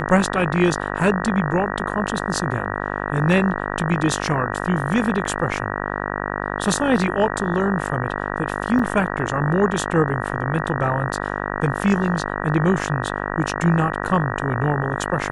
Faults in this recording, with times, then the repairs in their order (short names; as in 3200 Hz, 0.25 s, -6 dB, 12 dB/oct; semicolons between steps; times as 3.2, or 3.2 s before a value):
buzz 50 Hz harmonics 38 -26 dBFS
8.79 gap 4 ms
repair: de-hum 50 Hz, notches 38; interpolate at 8.79, 4 ms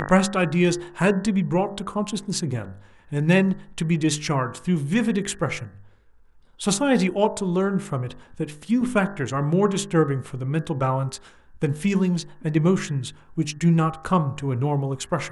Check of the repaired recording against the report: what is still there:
none